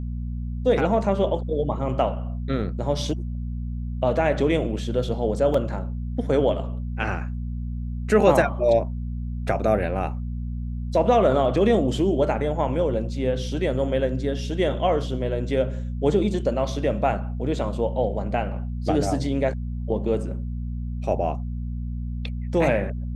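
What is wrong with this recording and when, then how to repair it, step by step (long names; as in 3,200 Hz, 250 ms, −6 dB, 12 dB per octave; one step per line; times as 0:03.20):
mains hum 60 Hz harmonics 4 −29 dBFS
0:05.54: drop-out 3.7 ms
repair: hum removal 60 Hz, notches 4
repair the gap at 0:05.54, 3.7 ms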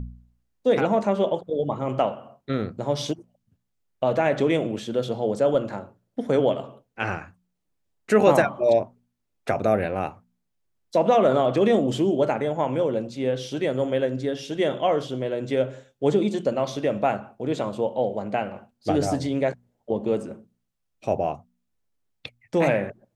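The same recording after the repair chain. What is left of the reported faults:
none of them is left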